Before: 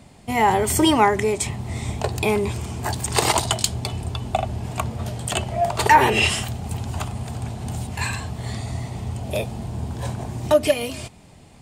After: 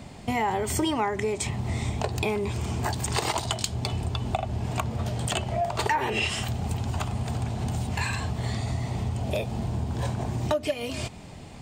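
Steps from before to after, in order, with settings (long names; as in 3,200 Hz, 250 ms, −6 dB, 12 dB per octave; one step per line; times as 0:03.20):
parametric band 11,000 Hz −10.5 dB 0.55 octaves
downward compressor 4 to 1, threshold −31 dBFS, peak gain reduction 18.5 dB
level +5 dB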